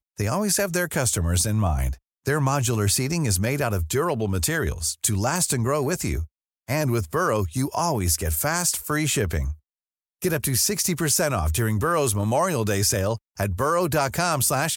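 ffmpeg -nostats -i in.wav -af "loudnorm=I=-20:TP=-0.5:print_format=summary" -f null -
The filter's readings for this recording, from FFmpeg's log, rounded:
Input Integrated:    -23.1 LUFS
Input True Peak:      -7.4 dBTP
Input LRA:             1.7 LU
Input Threshold:     -33.2 LUFS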